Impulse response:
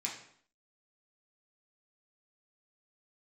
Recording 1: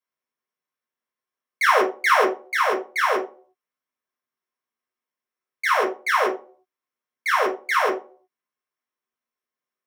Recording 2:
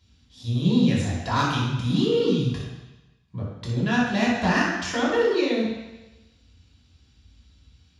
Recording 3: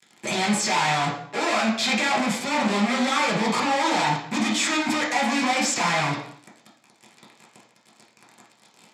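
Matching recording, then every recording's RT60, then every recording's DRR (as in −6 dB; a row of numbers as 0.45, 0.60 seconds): 3; 0.45, 1.0, 0.60 seconds; −3.0, −6.0, −3.5 decibels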